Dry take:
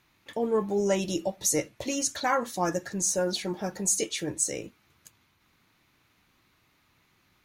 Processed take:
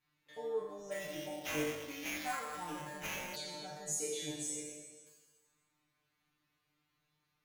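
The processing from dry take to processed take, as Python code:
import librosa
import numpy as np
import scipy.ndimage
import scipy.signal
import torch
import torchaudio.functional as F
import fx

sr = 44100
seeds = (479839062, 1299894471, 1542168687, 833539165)

y = fx.spec_trails(x, sr, decay_s=1.45)
y = fx.comb_fb(y, sr, f0_hz=150.0, decay_s=0.29, harmonics='all', damping=0.0, mix_pct=100)
y = fx.sample_hold(y, sr, seeds[0], rate_hz=8900.0, jitter_pct=0, at=(0.9, 3.35), fade=0.02)
y = F.gain(torch.from_numpy(y), -6.0).numpy()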